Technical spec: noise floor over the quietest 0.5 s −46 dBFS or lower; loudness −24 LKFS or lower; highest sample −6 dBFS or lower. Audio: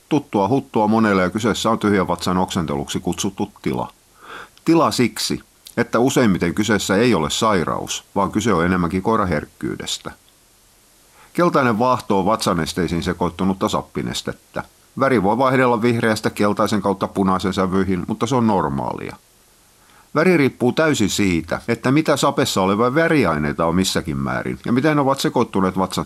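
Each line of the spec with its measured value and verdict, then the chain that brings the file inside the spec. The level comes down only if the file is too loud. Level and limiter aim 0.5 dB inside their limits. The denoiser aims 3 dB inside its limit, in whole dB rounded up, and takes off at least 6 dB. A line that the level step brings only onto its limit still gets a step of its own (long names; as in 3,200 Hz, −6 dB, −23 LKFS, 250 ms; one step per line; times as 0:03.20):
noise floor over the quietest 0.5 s −53 dBFS: in spec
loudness −19.0 LKFS: out of spec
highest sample −5.0 dBFS: out of spec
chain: level −5.5 dB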